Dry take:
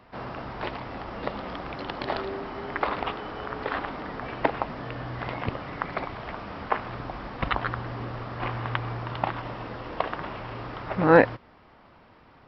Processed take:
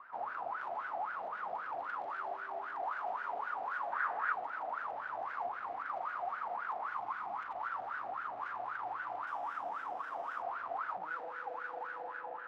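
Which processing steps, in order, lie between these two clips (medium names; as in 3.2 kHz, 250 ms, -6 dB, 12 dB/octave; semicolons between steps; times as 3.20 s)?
spring tank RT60 3.4 s, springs 38 ms, chirp 45 ms, DRR 2 dB; compression, threshold -27 dBFS, peak gain reduction 15.5 dB; 6.92–7.40 s: comb 0.9 ms, depth 67%; echo whose repeats swap between lows and highs 124 ms, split 1.3 kHz, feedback 85%, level -11 dB; valve stage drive 40 dB, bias 0.45; 3.92–4.33 s: peaking EQ 1.6 kHz +11 dB 0.9 oct; 9.27–10.43 s: sample-rate reducer 4.3 kHz, jitter 20%; wah-wah 3.8 Hz 700–1500 Hz, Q 13; trim +15 dB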